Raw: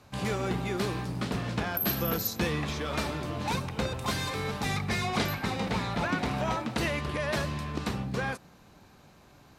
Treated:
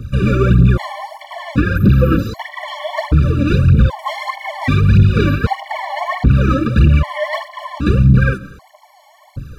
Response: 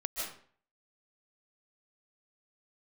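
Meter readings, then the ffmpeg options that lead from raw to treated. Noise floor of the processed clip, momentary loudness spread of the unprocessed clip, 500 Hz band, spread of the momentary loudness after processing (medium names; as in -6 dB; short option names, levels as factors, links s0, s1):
-48 dBFS, 5 LU, +11.0 dB, 15 LU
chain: -filter_complex "[0:a]highshelf=f=8100:g=8,acrossover=split=3700[s0][s1];[s1]acompressor=threshold=0.00224:ratio=4:attack=1:release=60[s2];[s0][s2]amix=inputs=2:normalize=0,bass=f=250:g=14,treble=f=4000:g=-7,aphaser=in_gain=1:out_gain=1:delay=3.8:decay=0.77:speed=1.6:type=triangular,asplit=2[s3][s4];[1:a]atrim=start_sample=2205[s5];[s4][s5]afir=irnorm=-1:irlink=0,volume=0.0841[s6];[s3][s6]amix=inputs=2:normalize=0,alimiter=level_in=3.76:limit=0.891:release=50:level=0:latency=1,afftfilt=real='re*gt(sin(2*PI*0.64*pts/sr)*(1-2*mod(floor(b*sr/1024/580),2)),0)':imag='im*gt(sin(2*PI*0.64*pts/sr)*(1-2*mod(floor(b*sr/1024/580),2)),0)':win_size=1024:overlap=0.75,volume=0.891"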